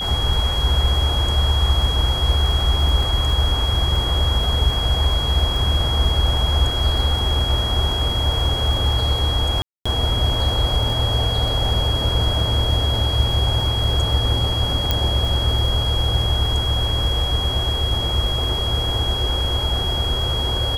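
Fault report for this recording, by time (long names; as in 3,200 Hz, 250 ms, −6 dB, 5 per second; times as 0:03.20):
surface crackle 15 per second −25 dBFS
whistle 3,300 Hz −23 dBFS
0:09.62–0:09.86: drop-out 235 ms
0:14.91: click −4 dBFS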